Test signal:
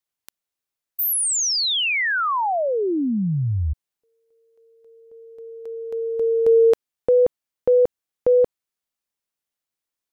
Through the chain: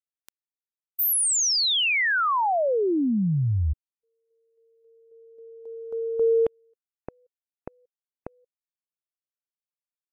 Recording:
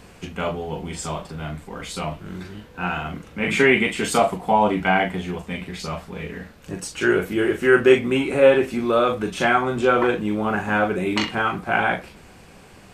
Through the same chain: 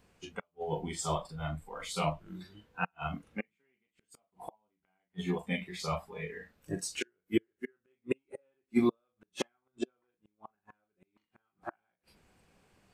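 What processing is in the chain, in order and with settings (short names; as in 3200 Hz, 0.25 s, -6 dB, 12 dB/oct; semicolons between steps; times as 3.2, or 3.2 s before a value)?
flipped gate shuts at -14 dBFS, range -40 dB; spectral noise reduction 14 dB; upward expander 1.5:1, over -34 dBFS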